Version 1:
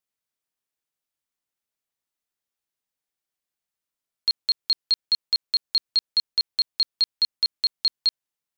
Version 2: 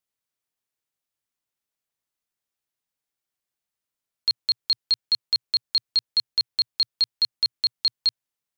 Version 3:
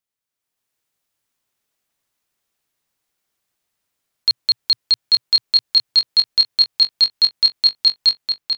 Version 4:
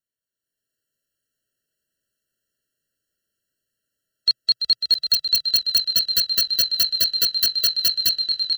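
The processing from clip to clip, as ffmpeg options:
-af "equalizer=f=120:t=o:w=0.44:g=4.5"
-filter_complex "[0:a]dynaudnorm=f=150:g=7:m=10dB,alimiter=limit=-8.5dB:level=0:latency=1:release=121,asplit=2[a][b];[b]adelay=860,lowpass=f=4.2k:p=1,volume=-3dB,asplit=2[c][d];[d]adelay=860,lowpass=f=4.2k:p=1,volume=0.36,asplit=2[e][f];[f]adelay=860,lowpass=f=4.2k:p=1,volume=0.36,asplit=2[g][h];[h]adelay=860,lowpass=f=4.2k:p=1,volume=0.36,asplit=2[i][j];[j]adelay=860,lowpass=f=4.2k:p=1,volume=0.36[k];[a][c][e][g][i][k]amix=inputs=6:normalize=0"
-filter_complex "[0:a]asplit=8[a][b][c][d][e][f][g][h];[b]adelay=337,afreqshift=-82,volume=-8dB[i];[c]adelay=674,afreqshift=-164,volume=-13.2dB[j];[d]adelay=1011,afreqshift=-246,volume=-18.4dB[k];[e]adelay=1348,afreqshift=-328,volume=-23.6dB[l];[f]adelay=1685,afreqshift=-410,volume=-28.8dB[m];[g]adelay=2022,afreqshift=-492,volume=-34dB[n];[h]adelay=2359,afreqshift=-574,volume=-39.2dB[o];[a][i][j][k][l][m][n][o]amix=inputs=8:normalize=0,aeval=exprs='(mod(2.66*val(0)+1,2)-1)/2.66':c=same,afftfilt=real='re*eq(mod(floor(b*sr/1024/660),2),0)':imag='im*eq(mod(floor(b*sr/1024/660),2),0)':win_size=1024:overlap=0.75,volume=-2dB"

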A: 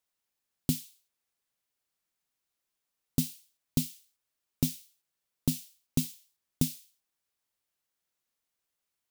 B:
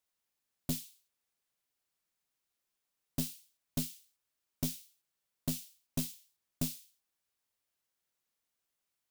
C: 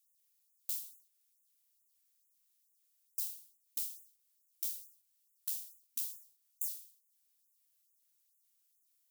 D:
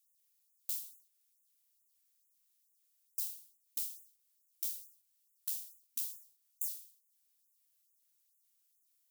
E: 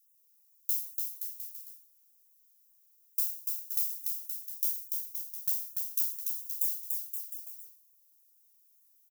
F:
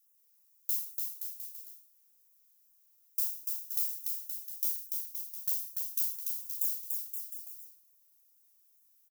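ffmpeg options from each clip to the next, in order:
-af "aeval=exprs='(tanh(22.4*val(0)+0.35)-tanh(0.35))/22.4':c=same"
-af "aderivative,acompressor=threshold=-58dB:ratio=1.5,afftfilt=real='re*gte(b*sr/1024,230*pow(6500/230,0.5+0.5*sin(2*PI*2.3*pts/sr)))':imag='im*gte(b*sr/1024,230*pow(6500/230,0.5+0.5*sin(2*PI*2.3*pts/sr)))':win_size=1024:overlap=0.75,volume=7.5dB"
-af anull
-filter_complex "[0:a]aexciter=amount=2.1:drive=4.8:freq=4.9k,asplit=2[a][b];[b]aecho=0:1:290|522|707.6|856.1|974.9:0.631|0.398|0.251|0.158|0.1[c];[a][c]amix=inputs=2:normalize=0,volume=-3dB"
-filter_complex "[0:a]highshelf=f=2.1k:g=-9,asplit=2[a][b];[b]adelay=37,volume=-7.5dB[c];[a][c]amix=inputs=2:normalize=0,volume=7dB"

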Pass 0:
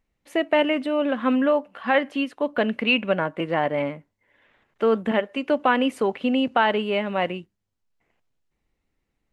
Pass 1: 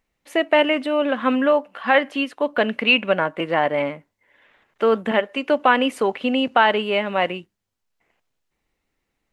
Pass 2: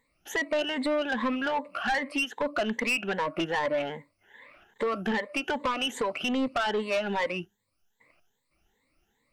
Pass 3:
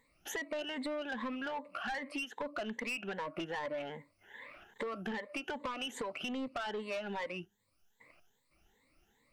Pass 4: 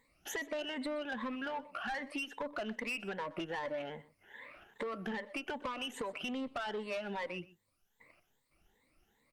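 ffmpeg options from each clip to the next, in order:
-af "lowshelf=f=320:g=-8,volume=5dB"
-af "afftfilt=real='re*pow(10,18/40*sin(2*PI*(1*log(max(b,1)*sr/1024/100)/log(2)-(2.5)*(pts-256)/sr)))':imag='im*pow(10,18/40*sin(2*PI*(1*log(max(b,1)*sr/1024/100)/log(2)-(2.5)*(pts-256)/sr)))':win_size=1024:overlap=0.75,acompressor=threshold=-24dB:ratio=2.5,asoftclip=type=tanh:threshold=-22.5dB"
-af "acompressor=threshold=-42dB:ratio=3,volume=1dB"
-af "aecho=1:1:124:0.106" -ar 48000 -c:a libopus -b:a 48k

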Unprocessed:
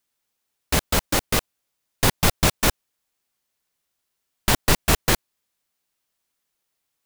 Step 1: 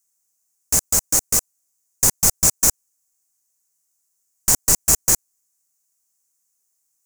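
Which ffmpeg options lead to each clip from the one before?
-af "highshelf=f=4.9k:t=q:w=3:g=12.5,volume=-6.5dB"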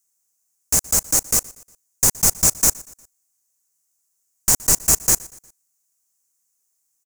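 -af "aecho=1:1:119|238|357:0.0794|0.0365|0.0168"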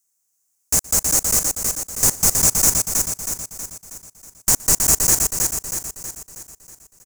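-af "aecho=1:1:320|640|960|1280|1600|1920|2240:0.631|0.322|0.164|0.0837|0.0427|0.0218|0.0111"

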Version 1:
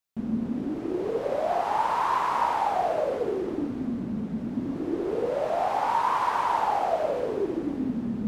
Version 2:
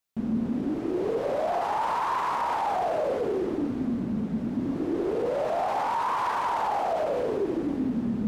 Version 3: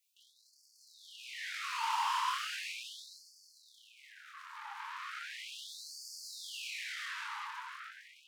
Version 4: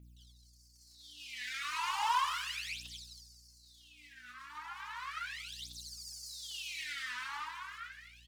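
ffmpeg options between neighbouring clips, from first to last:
-af "alimiter=limit=-22dB:level=0:latency=1:release=11,volume=2dB"
-af "asoftclip=type=tanh:threshold=-37dB,flanger=delay=22.5:depth=5.3:speed=0.63,afftfilt=real='re*gte(b*sr/1024,810*pow(4400/810,0.5+0.5*sin(2*PI*0.37*pts/sr)))':imag='im*gte(b*sr/1024,810*pow(4400/810,0.5+0.5*sin(2*PI*0.37*pts/sr)))':win_size=1024:overlap=0.75,volume=9dB"
-af "aeval=exprs='val(0)+0.000631*(sin(2*PI*60*n/s)+sin(2*PI*2*60*n/s)/2+sin(2*PI*3*60*n/s)/3+sin(2*PI*4*60*n/s)/4+sin(2*PI*5*60*n/s)/5)':c=same,aphaser=in_gain=1:out_gain=1:delay=4.1:decay=0.78:speed=0.35:type=triangular,aecho=1:1:234:0.075,volume=-3.5dB"

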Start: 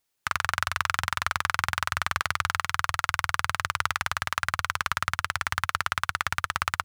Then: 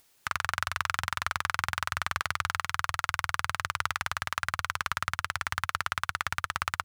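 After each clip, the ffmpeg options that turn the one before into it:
-af "acompressor=mode=upward:threshold=-46dB:ratio=2.5,volume=-3.5dB"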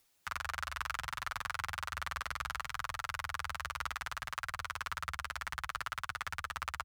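-filter_complex "[0:a]afreqshift=-16,asplit=2[a][b];[b]adelay=7.7,afreqshift=-0.65[c];[a][c]amix=inputs=2:normalize=1,volume=-5dB"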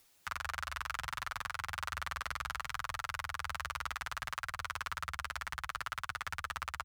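-af "alimiter=level_in=6dB:limit=-24dB:level=0:latency=1:release=477,volume=-6dB,volume=5.5dB"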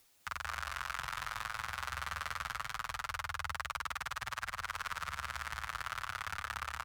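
-af "aecho=1:1:204|408|612|816:0.501|0.185|0.0686|0.0254,volume=-1dB"

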